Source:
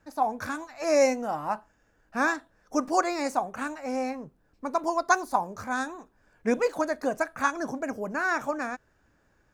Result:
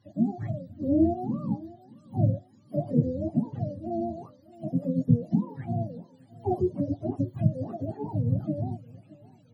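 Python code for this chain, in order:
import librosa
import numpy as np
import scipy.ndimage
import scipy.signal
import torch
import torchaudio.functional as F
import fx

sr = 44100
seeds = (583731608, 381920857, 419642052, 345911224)

p1 = fx.octave_mirror(x, sr, pivot_hz=420.0)
p2 = fx.peak_eq(p1, sr, hz=2700.0, db=4.5, octaves=0.45)
y = p2 + fx.echo_tape(p2, sr, ms=619, feedback_pct=43, wet_db=-19.5, lp_hz=2000.0, drive_db=4.0, wow_cents=17, dry=0)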